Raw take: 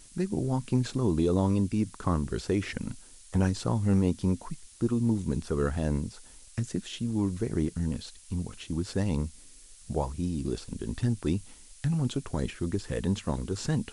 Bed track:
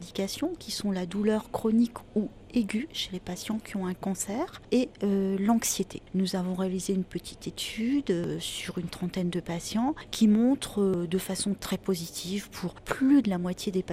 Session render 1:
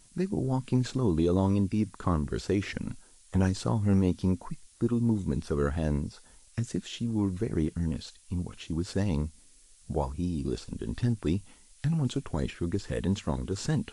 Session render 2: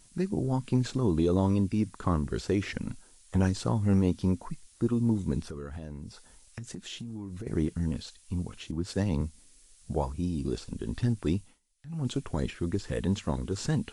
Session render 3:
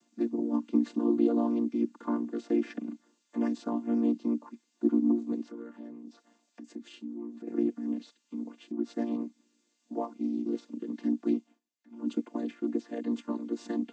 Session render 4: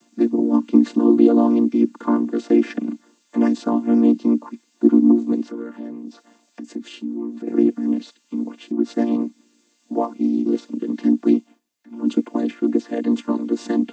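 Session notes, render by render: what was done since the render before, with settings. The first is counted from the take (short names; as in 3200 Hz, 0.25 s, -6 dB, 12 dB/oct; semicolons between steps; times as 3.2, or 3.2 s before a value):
noise print and reduce 6 dB
5.47–7.47 compressor 8:1, threshold -35 dBFS; 8.71–9.21 three-band expander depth 70%; 11.36–12.11 dip -19.5 dB, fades 0.24 s
chord vocoder major triad, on A#3
gain +12 dB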